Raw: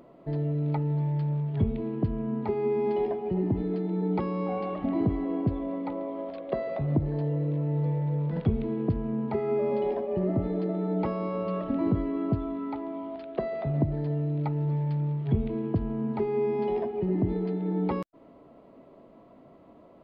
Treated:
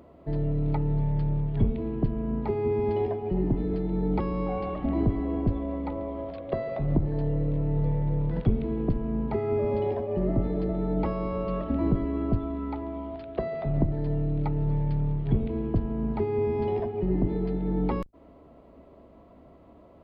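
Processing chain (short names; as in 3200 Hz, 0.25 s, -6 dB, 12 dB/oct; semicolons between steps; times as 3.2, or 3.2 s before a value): octaver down 2 oct, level -2 dB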